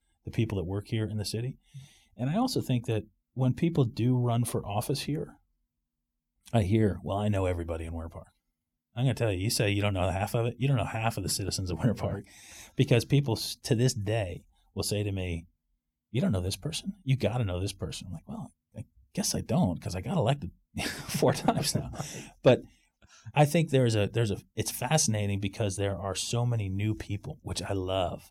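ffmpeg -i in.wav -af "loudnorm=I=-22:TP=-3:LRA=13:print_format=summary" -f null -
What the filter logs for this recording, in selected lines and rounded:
Input Integrated:    -29.9 LUFS
Input True Peak:     -11.2 dBTP
Input LRA:             4.4 LU
Input Threshold:     -40.4 LUFS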